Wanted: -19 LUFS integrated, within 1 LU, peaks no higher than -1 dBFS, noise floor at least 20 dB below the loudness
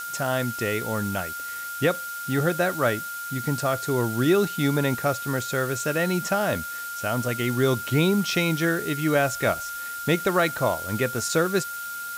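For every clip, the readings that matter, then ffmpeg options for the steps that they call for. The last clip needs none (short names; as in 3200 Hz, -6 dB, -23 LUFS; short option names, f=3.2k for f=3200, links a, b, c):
steady tone 1400 Hz; tone level -32 dBFS; noise floor -34 dBFS; noise floor target -45 dBFS; loudness -25.0 LUFS; peak -10.0 dBFS; loudness target -19.0 LUFS
-> -af "bandreject=f=1.4k:w=30"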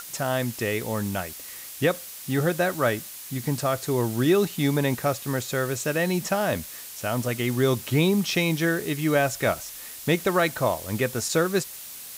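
steady tone none; noise floor -40 dBFS; noise floor target -46 dBFS
-> -af "afftdn=nr=6:nf=-40"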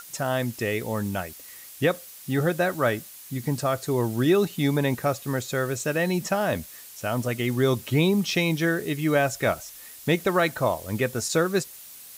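noise floor -45 dBFS; noise floor target -46 dBFS
-> -af "afftdn=nr=6:nf=-45"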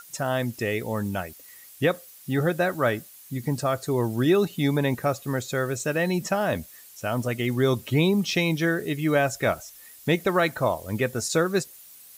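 noise floor -48 dBFS; loudness -25.5 LUFS; peak -10.5 dBFS; loudness target -19.0 LUFS
-> -af "volume=6.5dB"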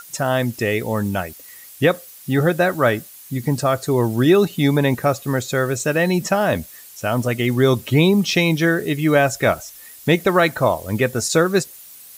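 loudness -19.0 LUFS; peak -4.0 dBFS; noise floor -42 dBFS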